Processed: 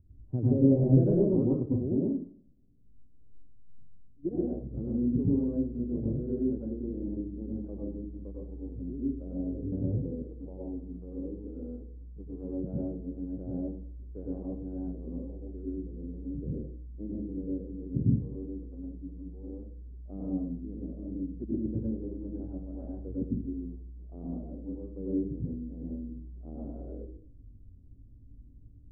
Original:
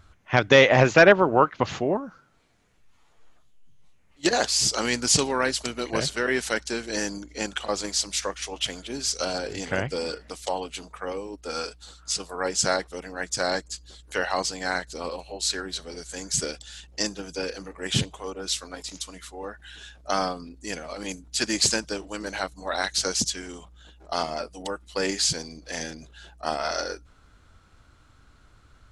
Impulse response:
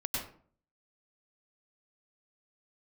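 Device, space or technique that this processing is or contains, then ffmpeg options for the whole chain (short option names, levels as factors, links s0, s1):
next room: -filter_complex "[0:a]lowpass=f=340:w=0.5412,lowpass=f=340:w=1.3066[s0];[1:a]atrim=start_sample=2205[s1];[s0][s1]afir=irnorm=-1:irlink=0,volume=0.668"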